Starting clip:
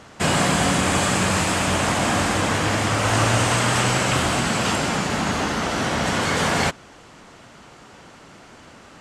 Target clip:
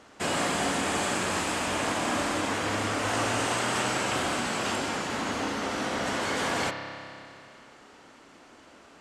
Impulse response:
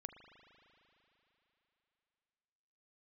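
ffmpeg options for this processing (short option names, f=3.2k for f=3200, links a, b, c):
-filter_complex "[0:a]lowshelf=f=210:t=q:w=1.5:g=-6[a];[1:a]atrim=start_sample=2205,asetrate=57330,aresample=44100[b];[a][b]afir=irnorm=-1:irlink=0"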